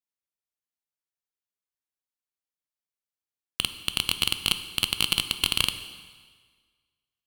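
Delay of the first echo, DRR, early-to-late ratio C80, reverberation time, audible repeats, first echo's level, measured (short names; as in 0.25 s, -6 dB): none, 9.5 dB, 12.5 dB, 1.6 s, none, none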